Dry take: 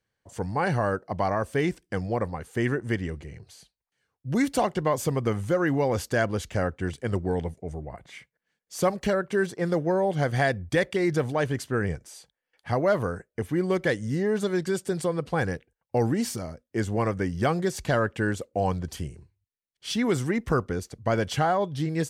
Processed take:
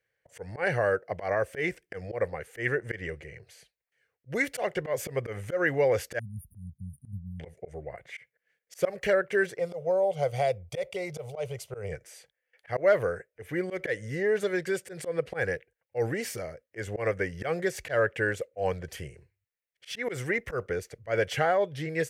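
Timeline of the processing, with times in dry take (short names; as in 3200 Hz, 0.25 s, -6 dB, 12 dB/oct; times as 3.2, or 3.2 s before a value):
6.19–7.4 brick-wall FIR band-stop 240–9000 Hz
9.59–11.92 fixed phaser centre 710 Hz, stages 4
whole clip: graphic EQ 125/250/500/1000/2000/4000/8000 Hz +4/-10/+10/-10/+10/-6/-4 dB; auto swell 0.11 s; low shelf 300 Hz -9.5 dB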